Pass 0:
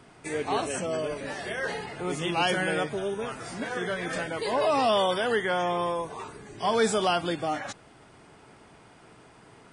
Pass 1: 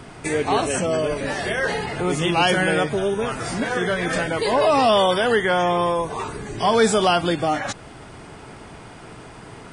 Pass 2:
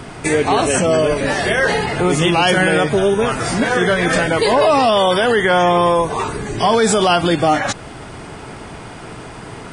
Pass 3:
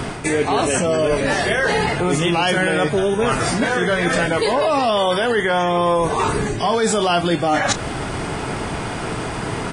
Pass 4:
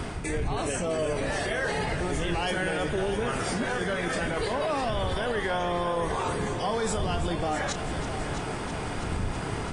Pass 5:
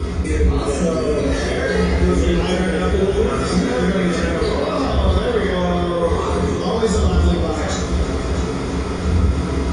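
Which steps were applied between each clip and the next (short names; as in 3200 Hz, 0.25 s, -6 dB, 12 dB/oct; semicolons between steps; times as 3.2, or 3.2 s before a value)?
low shelf 92 Hz +8.5 dB; in parallel at +1.5 dB: compressor, threshold -37 dBFS, peak gain reduction 17 dB; on the sum: gain +5 dB
limiter -13 dBFS, peak gain reduction 7 dB; gain +7.5 dB
reverse; compressor 5:1, threshold -24 dBFS, peak gain reduction 12.5 dB; reverse; doubler 29 ms -13.5 dB; gain +7.5 dB
wind noise 100 Hz -23 dBFS; limiter -11.5 dBFS, peak gain reduction 10 dB; multi-head echo 0.328 s, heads first and second, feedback 64%, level -13 dB; gain -9 dB
reverb RT60 0.70 s, pre-delay 3 ms, DRR -5.5 dB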